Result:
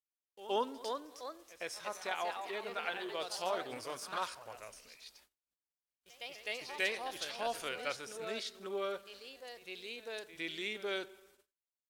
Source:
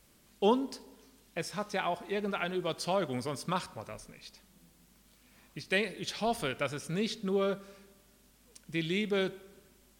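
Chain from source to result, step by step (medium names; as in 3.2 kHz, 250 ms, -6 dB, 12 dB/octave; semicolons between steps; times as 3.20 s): peaking EQ 170 Hz -13 dB 1.1 oct; ever faster or slower copies 344 ms, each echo +2 st, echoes 2, each echo -6 dB; on a send: reverse echo 92 ms -16.5 dB; on the sum: gate -58 dBFS, range -37 dB; bass shelf 280 Hz -10.5 dB; tempo 0.84×; trim -3.5 dB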